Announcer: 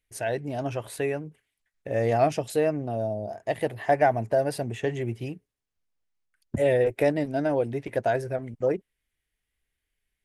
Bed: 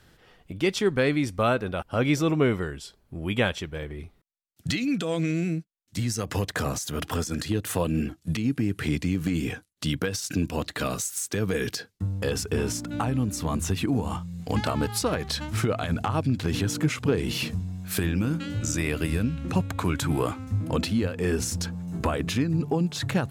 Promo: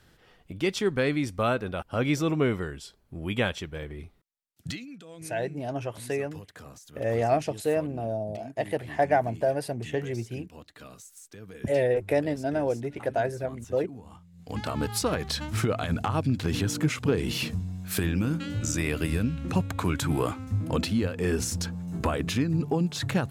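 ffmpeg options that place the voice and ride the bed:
-filter_complex "[0:a]adelay=5100,volume=0.794[s0];[1:a]volume=5.62,afade=t=out:st=4.54:d=0.33:silence=0.158489,afade=t=in:st=14.32:d=0.63:silence=0.133352[s1];[s0][s1]amix=inputs=2:normalize=0"

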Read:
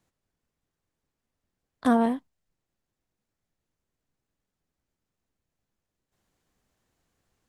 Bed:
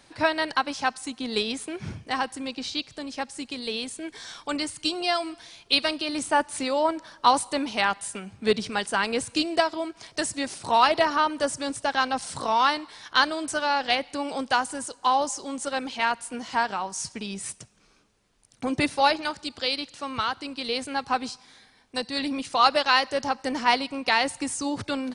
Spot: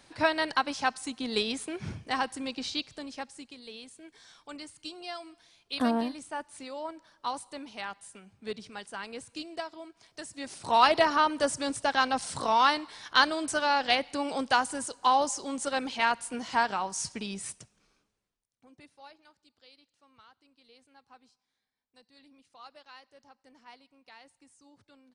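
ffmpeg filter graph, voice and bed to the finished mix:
-filter_complex "[0:a]adelay=3950,volume=0.531[s0];[1:a]volume=3.35,afade=t=out:st=2.72:d=0.85:silence=0.251189,afade=t=in:st=10.31:d=0.54:silence=0.223872,afade=t=out:st=17.09:d=1.37:silence=0.0354813[s1];[s0][s1]amix=inputs=2:normalize=0"

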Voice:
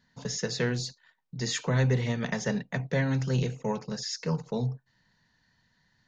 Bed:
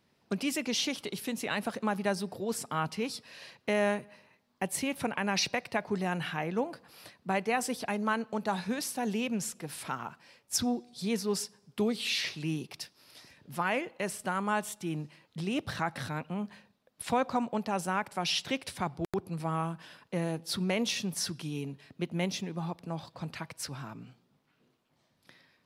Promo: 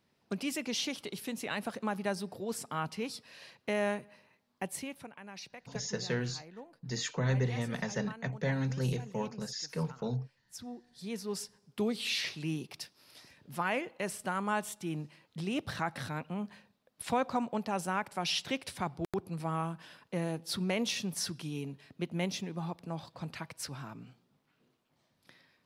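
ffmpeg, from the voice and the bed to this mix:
-filter_complex "[0:a]adelay=5500,volume=0.562[s0];[1:a]volume=3.98,afade=t=out:st=4.57:d=0.52:silence=0.199526,afade=t=in:st=10.55:d=1.41:silence=0.16788[s1];[s0][s1]amix=inputs=2:normalize=0"

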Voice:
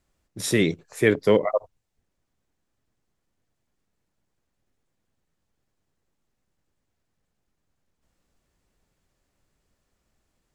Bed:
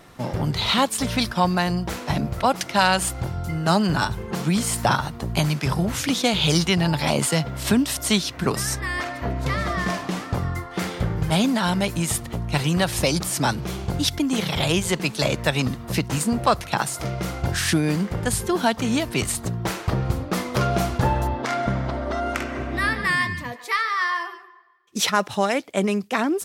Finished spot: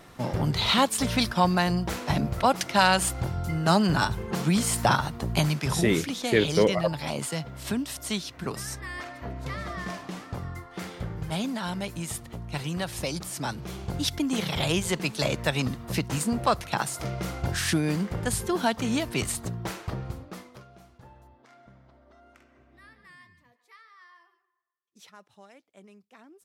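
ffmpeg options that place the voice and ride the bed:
-filter_complex "[0:a]adelay=5300,volume=0.708[s0];[1:a]volume=1.5,afade=t=out:st=5.34:d=0.76:silence=0.398107,afade=t=in:st=13.47:d=0.76:silence=0.530884,afade=t=out:st=19.25:d=1.39:silence=0.0501187[s1];[s0][s1]amix=inputs=2:normalize=0"

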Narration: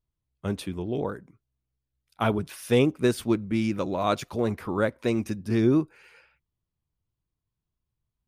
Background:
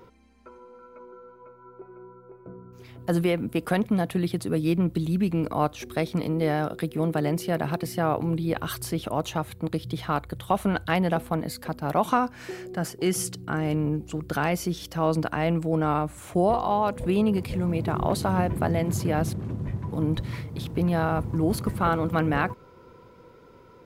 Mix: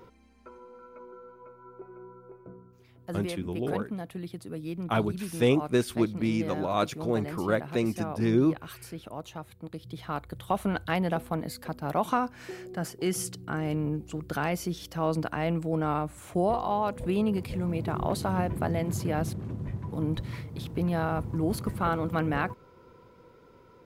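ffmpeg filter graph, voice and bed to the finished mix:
-filter_complex "[0:a]adelay=2700,volume=0.794[s0];[1:a]volume=2.24,afade=t=out:st=2.29:d=0.5:silence=0.281838,afade=t=in:st=9.73:d=0.79:silence=0.398107[s1];[s0][s1]amix=inputs=2:normalize=0"

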